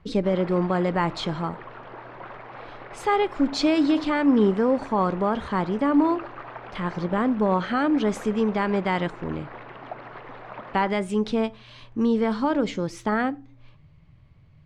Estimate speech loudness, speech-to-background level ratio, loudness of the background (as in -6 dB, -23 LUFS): -24.0 LUFS, 16.5 dB, -40.5 LUFS